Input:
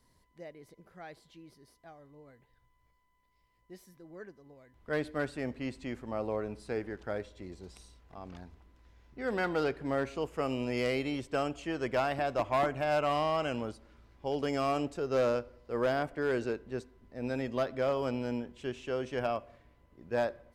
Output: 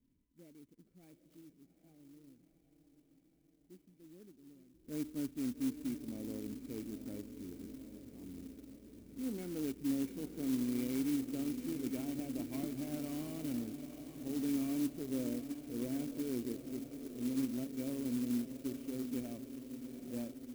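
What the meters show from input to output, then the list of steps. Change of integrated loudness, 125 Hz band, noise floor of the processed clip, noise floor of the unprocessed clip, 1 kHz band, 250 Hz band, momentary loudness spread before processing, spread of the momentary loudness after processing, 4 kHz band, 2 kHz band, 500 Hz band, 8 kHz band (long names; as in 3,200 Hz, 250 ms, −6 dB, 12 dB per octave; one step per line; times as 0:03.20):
−6.0 dB, −7.0 dB, −71 dBFS, −71 dBFS, −23.5 dB, +1.5 dB, 19 LU, 16 LU, −9.0 dB, −18.5 dB, −15.0 dB, +5.0 dB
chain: formant resonators in series i
feedback delay with all-pass diffusion 830 ms, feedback 67%, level −9.5 dB
converter with an unsteady clock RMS 0.087 ms
level +3 dB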